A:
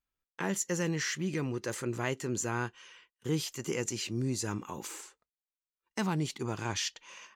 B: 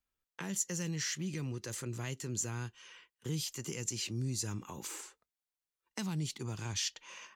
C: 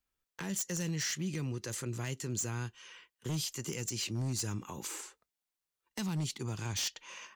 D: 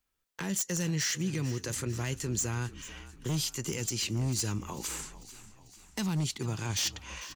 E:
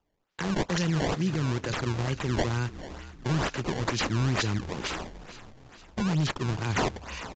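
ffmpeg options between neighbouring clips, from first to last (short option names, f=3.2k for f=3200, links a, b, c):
-filter_complex "[0:a]acrossover=split=180|3000[a][b][c];[b]acompressor=threshold=-44dB:ratio=5[d];[a][d][c]amix=inputs=3:normalize=0"
-af "aeval=exprs='0.0316*(abs(mod(val(0)/0.0316+3,4)-2)-1)':c=same,volume=2dB"
-filter_complex "[0:a]asplit=6[a][b][c][d][e][f];[b]adelay=445,afreqshift=-44,volume=-16dB[g];[c]adelay=890,afreqshift=-88,volume=-21.2dB[h];[d]adelay=1335,afreqshift=-132,volume=-26.4dB[i];[e]adelay=1780,afreqshift=-176,volume=-31.6dB[j];[f]adelay=2225,afreqshift=-220,volume=-36.8dB[k];[a][g][h][i][j][k]amix=inputs=6:normalize=0,volume=4dB"
-af "acrusher=samples=20:mix=1:aa=0.000001:lfo=1:lforange=32:lforate=2.2,aresample=16000,aresample=44100,volume=4.5dB"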